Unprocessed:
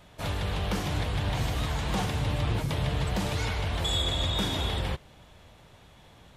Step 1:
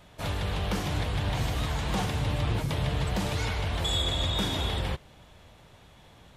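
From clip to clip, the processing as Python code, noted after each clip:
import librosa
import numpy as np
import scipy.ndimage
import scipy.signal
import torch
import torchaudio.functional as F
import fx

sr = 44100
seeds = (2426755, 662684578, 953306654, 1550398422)

y = x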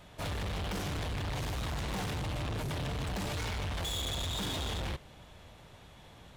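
y = np.clip(x, -10.0 ** (-33.5 / 20.0), 10.0 ** (-33.5 / 20.0))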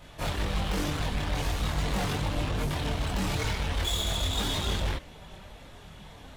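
y = fx.chorus_voices(x, sr, voices=6, hz=0.39, base_ms=23, depth_ms=3.7, mix_pct=55)
y = y * librosa.db_to_amplitude(8.5)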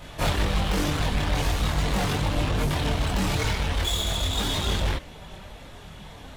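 y = fx.rider(x, sr, range_db=10, speed_s=0.5)
y = y * librosa.db_to_amplitude(4.5)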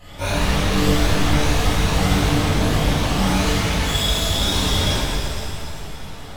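y = fx.spec_ripple(x, sr, per_octave=1.5, drift_hz=2.6, depth_db=12)
y = fx.rev_shimmer(y, sr, seeds[0], rt60_s=2.5, semitones=7, shimmer_db=-8, drr_db=-9.5)
y = y * librosa.db_to_amplitude(-6.0)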